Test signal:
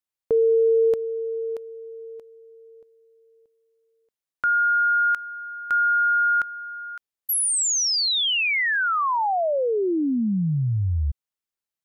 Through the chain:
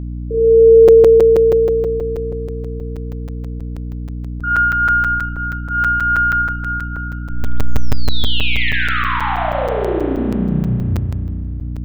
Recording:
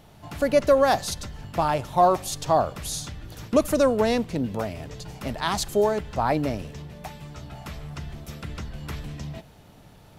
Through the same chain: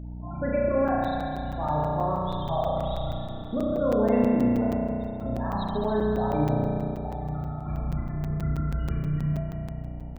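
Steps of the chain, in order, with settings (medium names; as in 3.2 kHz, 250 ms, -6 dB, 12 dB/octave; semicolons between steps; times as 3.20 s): tracing distortion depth 0.023 ms; elliptic low-pass 3.7 kHz, stop band 70 dB; peak limiter -20.5 dBFS; gain riding within 4 dB 2 s; loudest bins only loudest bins 16; on a send: two-band feedback delay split 1.3 kHz, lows 94 ms, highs 301 ms, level -12.5 dB; on the sum: spring tank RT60 2.7 s, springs 33 ms, chirp 45 ms, DRR -5.5 dB; hum 60 Hz, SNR 11 dB; crackling interface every 0.16 s, samples 256, zero, from 0.88 s; trim -1.5 dB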